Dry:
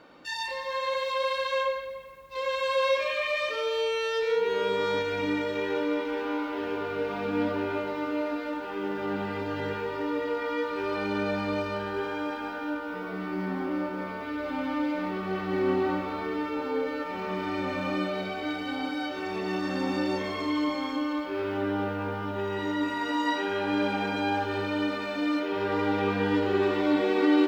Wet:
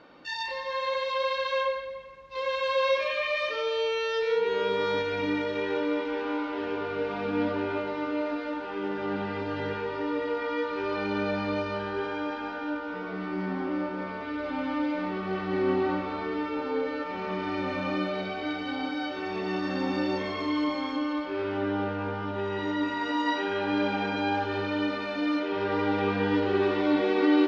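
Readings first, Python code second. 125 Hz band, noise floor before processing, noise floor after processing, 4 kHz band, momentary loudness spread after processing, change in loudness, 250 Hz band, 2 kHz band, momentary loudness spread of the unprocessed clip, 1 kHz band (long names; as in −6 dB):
0.0 dB, −36 dBFS, −36 dBFS, 0.0 dB, 7 LU, 0.0 dB, 0.0 dB, 0.0 dB, 7 LU, 0.0 dB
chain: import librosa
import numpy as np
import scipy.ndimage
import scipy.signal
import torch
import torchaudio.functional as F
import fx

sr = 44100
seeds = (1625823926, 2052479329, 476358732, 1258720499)

y = scipy.signal.sosfilt(scipy.signal.butter(4, 5800.0, 'lowpass', fs=sr, output='sos'), x)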